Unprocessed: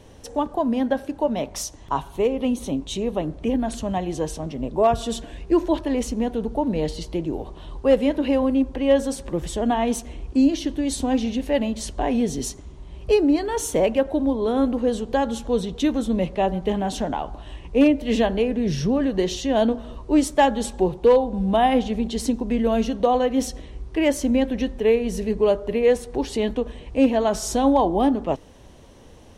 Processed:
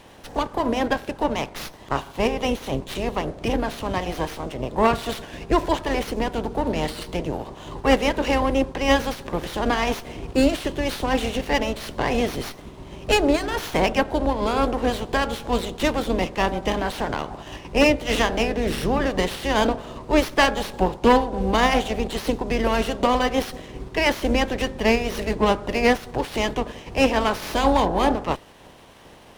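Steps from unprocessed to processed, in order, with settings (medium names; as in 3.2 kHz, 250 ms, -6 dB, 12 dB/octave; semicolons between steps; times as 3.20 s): spectral peaks clipped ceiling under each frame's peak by 18 dB; sliding maximum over 5 samples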